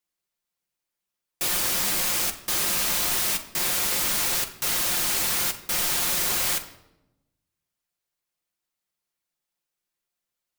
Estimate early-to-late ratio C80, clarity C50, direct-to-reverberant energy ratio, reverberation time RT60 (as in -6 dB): 14.5 dB, 12.5 dB, 3.0 dB, 0.90 s